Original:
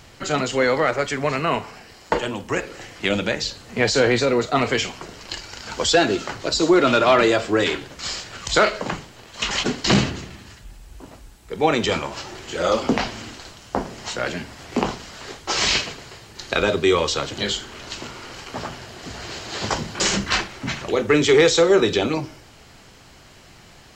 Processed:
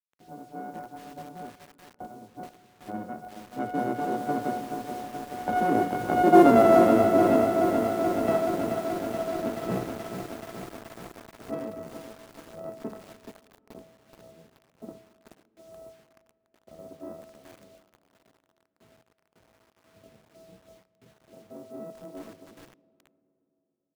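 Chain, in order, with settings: sample sorter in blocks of 64 samples; Doppler pass-by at 6.51, 19 m/s, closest 3.6 m; LPF 1000 Hz 12 dB/oct; in parallel at +1 dB: negative-ratio compressor -37 dBFS, ratio -1; on the sum: doubler 18 ms -11.5 dB; modulation noise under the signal 27 dB; dynamic EQ 280 Hz, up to +7 dB, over -46 dBFS, Q 0.87; low-pass opened by the level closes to 460 Hz, open at -24 dBFS; bit-crush 10-bit; HPF 160 Hz 6 dB/oct; on a send at -17.5 dB: reverb RT60 3.3 s, pre-delay 20 ms; on the sum: lo-fi delay 0.428 s, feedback 80%, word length 7-bit, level -7 dB

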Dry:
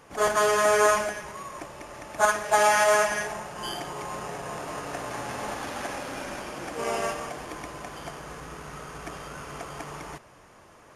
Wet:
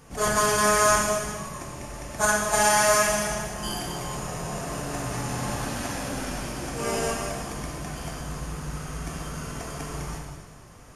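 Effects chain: tone controls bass +13 dB, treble +8 dB; non-linear reverb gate 0.49 s falling, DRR -1 dB; gain -3.5 dB

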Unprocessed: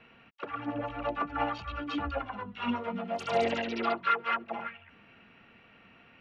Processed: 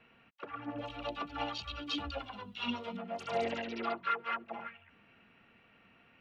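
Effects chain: 0.78–2.97 resonant high shelf 2600 Hz +12 dB, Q 1.5; gain -6 dB

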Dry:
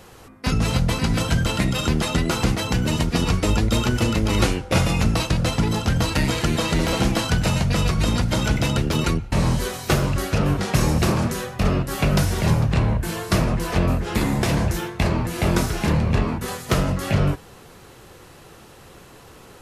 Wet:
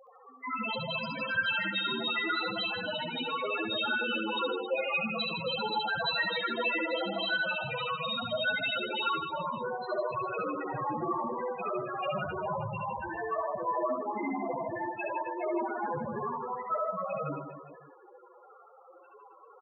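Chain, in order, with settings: RIAA curve recording; overdrive pedal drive 13 dB, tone 1400 Hz, clips at -1.5 dBFS; loudest bins only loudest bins 2; reverse bouncing-ball echo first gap 70 ms, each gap 1.25×, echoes 5

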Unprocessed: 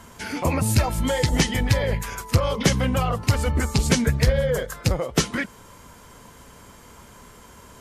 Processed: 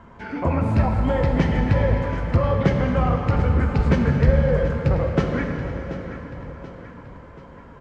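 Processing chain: LPF 1600 Hz 12 dB/oct; on a send: feedback echo 0.732 s, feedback 48%, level -13 dB; on the sum: plate-style reverb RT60 3.8 s, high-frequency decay 0.8×, DRR 2 dB

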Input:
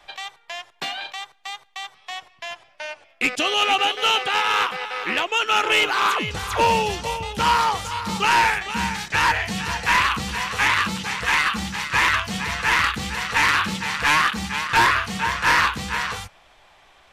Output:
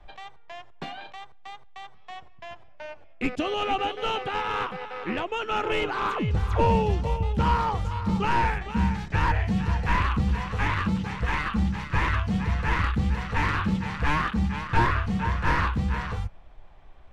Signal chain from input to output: tilt -4.5 dB/oct; gain -6.5 dB

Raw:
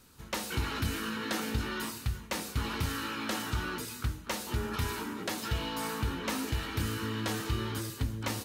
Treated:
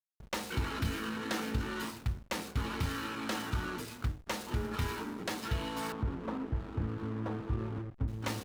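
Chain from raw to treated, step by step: 5.92–8.08 LPF 1400 Hz 24 dB/oct; backlash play -36.5 dBFS; gain -1 dB

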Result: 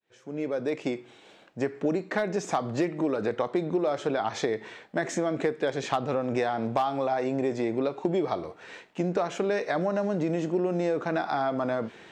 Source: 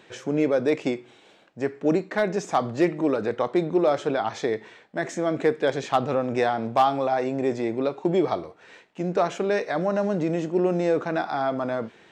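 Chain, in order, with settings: opening faded in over 1.85 s; compressor 5:1, threshold -28 dBFS, peak gain reduction 12 dB; gain +4 dB

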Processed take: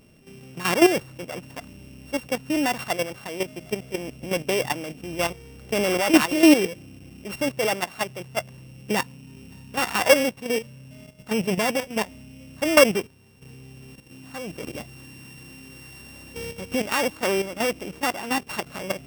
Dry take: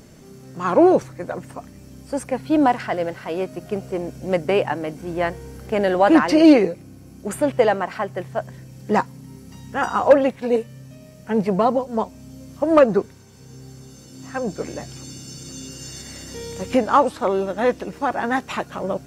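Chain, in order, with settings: sample sorter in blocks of 16 samples; level quantiser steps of 11 dB

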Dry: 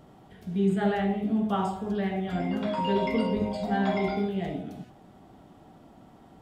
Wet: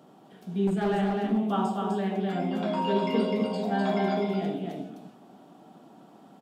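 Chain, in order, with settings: HPF 170 Hz 24 dB/oct; bell 2000 Hz -7.5 dB 0.27 oct; 0.67–1.29 hard clip -23 dBFS, distortion -20 dB; on a send: echo 0.253 s -4 dB

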